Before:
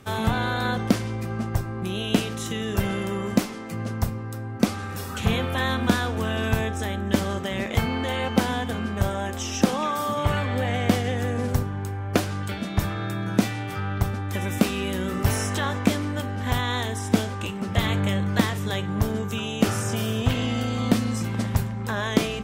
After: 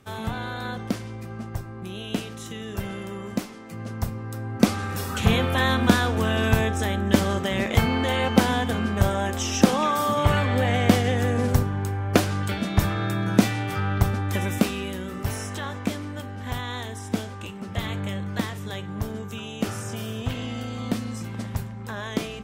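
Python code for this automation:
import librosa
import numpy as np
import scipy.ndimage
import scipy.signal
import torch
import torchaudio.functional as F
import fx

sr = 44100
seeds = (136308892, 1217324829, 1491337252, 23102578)

y = fx.gain(x, sr, db=fx.line((3.62, -6.5), (4.66, 3.0), (14.31, 3.0), (15.07, -6.0)))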